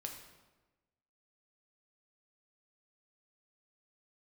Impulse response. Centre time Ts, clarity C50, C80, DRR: 31 ms, 6.0 dB, 8.0 dB, 1.5 dB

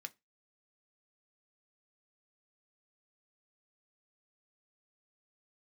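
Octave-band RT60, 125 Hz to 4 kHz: 0.25, 0.25, 0.20, 0.20, 0.20, 0.20 s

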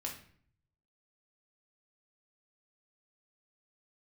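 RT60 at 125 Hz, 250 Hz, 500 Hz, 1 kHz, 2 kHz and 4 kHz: 1.1, 0.70, 0.55, 0.50, 0.55, 0.45 s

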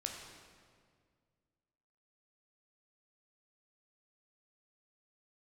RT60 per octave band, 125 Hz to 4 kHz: 2.6, 2.4, 2.1, 1.8, 1.6, 1.4 s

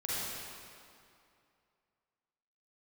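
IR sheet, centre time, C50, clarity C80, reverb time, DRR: 0.182 s, -6.0 dB, -3.0 dB, 2.5 s, -8.5 dB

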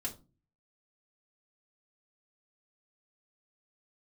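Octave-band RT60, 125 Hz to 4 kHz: 0.65, 0.50, 0.35, 0.30, 0.20, 0.20 s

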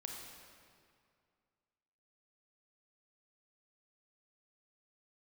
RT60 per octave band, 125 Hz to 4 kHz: 2.4, 2.3, 2.3, 2.2, 2.0, 1.7 s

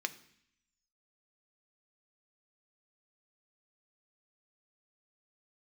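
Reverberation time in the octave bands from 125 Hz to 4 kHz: 0.85, 0.85, 0.60, 0.70, 0.85, 0.85 s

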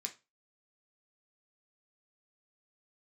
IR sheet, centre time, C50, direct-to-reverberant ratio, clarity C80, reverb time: 8 ms, 14.5 dB, 2.0 dB, 23.0 dB, 0.25 s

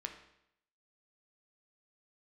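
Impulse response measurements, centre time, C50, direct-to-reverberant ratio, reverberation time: 18 ms, 8.5 dB, 4.0 dB, 0.75 s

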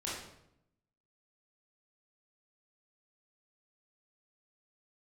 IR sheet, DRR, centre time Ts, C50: -7.5 dB, 61 ms, 0.5 dB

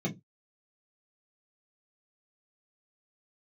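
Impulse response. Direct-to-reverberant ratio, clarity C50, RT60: -3.0 dB, 18.5 dB, not exponential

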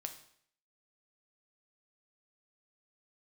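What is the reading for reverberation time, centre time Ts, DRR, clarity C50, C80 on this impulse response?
0.60 s, 12 ms, 5.0 dB, 10.5 dB, 13.5 dB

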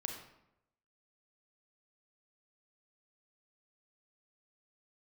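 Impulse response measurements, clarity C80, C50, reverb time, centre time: 7.5 dB, 4.5 dB, 0.85 s, 31 ms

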